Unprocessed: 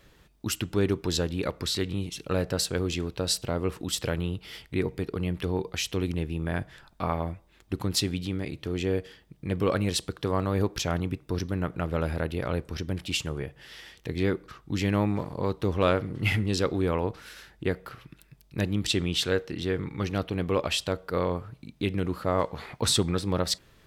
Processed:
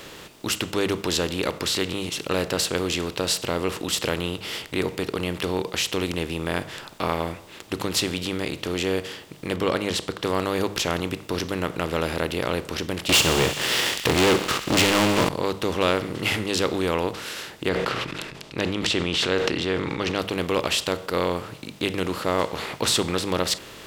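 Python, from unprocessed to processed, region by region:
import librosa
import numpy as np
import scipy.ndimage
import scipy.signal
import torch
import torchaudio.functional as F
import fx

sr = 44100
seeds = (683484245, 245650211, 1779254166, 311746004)

y = fx.chain(x, sr, fx.high_shelf(hz=5700.0, db=-11.5),
    fx.notch(hz=2600.0, q=13.0), at=(9.56, 10.24))
y = fx.chain(y, sr, fx.leveller(passes=5),
    fx.echo_wet_highpass(ms=62, feedback_pct=75, hz=2100.0, wet_db=-15.5), at=(13.09, 15.29))
y = fx.chain(y, sr, fx.lowpass(hz=4300.0, slope=12),
    fx.sustainer(db_per_s=35.0), at=(17.69, 20.19))
y = fx.bin_compress(y, sr, power=0.6)
y = fx.low_shelf(y, sr, hz=180.0, db=-11.0)
y = fx.hum_notches(y, sr, base_hz=50, count=4)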